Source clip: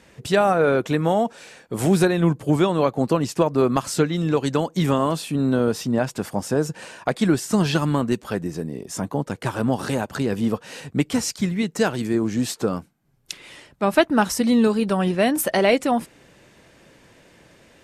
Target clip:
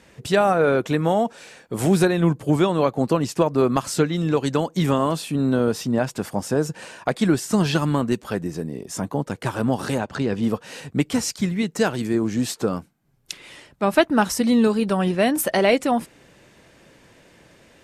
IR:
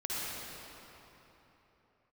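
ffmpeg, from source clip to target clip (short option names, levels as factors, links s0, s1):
-filter_complex "[0:a]asettb=1/sr,asplit=3[s0][s1][s2];[s0]atrim=end=9.984[s3];[s1]atrim=start=9.98:end=10.43,asetpts=PTS-STARTPTS,afade=t=in:d=0.004:c=qsin,afade=t=out:st=0.446:d=0.004:c=qsin,lowpass=5800[s4];[s2]atrim=start=10.426[s5];[s3][s4]acrossfade=d=0.004:c1=hsin:c2=qsin[s6];[s6][s5]acrossfade=d=0.004:c1=qsin:c2=hsin"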